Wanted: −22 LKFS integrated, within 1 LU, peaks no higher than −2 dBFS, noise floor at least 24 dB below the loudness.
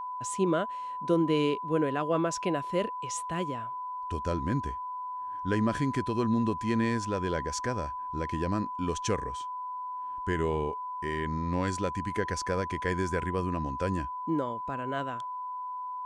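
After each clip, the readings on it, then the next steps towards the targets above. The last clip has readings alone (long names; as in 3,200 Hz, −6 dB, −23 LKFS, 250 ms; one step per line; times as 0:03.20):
interfering tone 1,000 Hz; level of the tone −34 dBFS; integrated loudness −31.0 LKFS; sample peak −14.0 dBFS; target loudness −22.0 LKFS
→ notch filter 1,000 Hz, Q 30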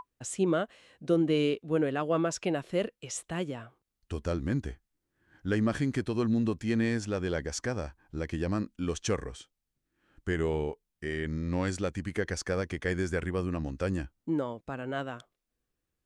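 interfering tone none found; integrated loudness −32.0 LKFS; sample peak −15.0 dBFS; target loudness −22.0 LKFS
→ level +10 dB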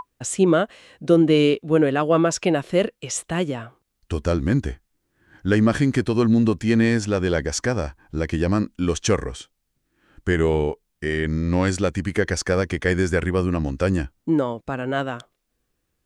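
integrated loudness −22.0 LKFS; sample peak −5.0 dBFS; background noise floor −75 dBFS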